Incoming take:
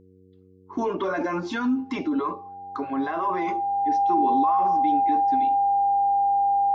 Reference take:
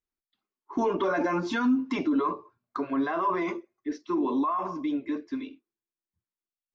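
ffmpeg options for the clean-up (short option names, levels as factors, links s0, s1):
-af "bandreject=f=93.3:t=h:w=4,bandreject=f=186.6:t=h:w=4,bandreject=f=279.9:t=h:w=4,bandreject=f=373.2:t=h:w=4,bandreject=f=466.5:t=h:w=4,bandreject=f=800:w=30"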